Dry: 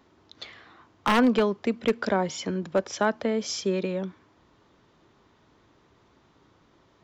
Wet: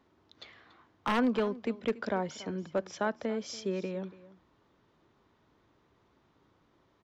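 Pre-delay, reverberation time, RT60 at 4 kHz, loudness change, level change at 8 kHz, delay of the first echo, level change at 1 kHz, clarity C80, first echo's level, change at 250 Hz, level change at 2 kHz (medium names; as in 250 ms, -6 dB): no reverb, no reverb, no reverb, -7.0 dB, -11.0 dB, 284 ms, -7.0 dB, no reverb, -18.5 dB, -7.0 dB, -7.5 dB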